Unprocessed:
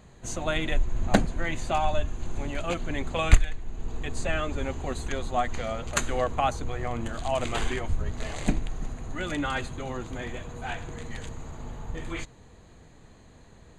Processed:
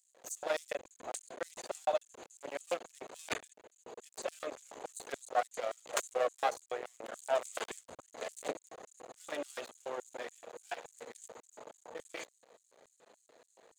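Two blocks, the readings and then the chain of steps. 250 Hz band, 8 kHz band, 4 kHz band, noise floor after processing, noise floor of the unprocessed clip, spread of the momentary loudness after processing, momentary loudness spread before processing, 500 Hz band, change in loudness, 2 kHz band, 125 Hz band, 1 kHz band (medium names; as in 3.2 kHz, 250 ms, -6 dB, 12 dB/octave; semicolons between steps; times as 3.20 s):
-20.0 dB, -6.0 dB, -10.0 dB, -74 dBFS, -52 dBFS, 17 LU, 13 LU, -5.5 dB, -9.0 dB, -11.0 dB, under -30 dB, -8.0 dB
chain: half-wave rectifier; LFO high-pass square 3.5 Hz 520–8000 Hz; trim -4 dB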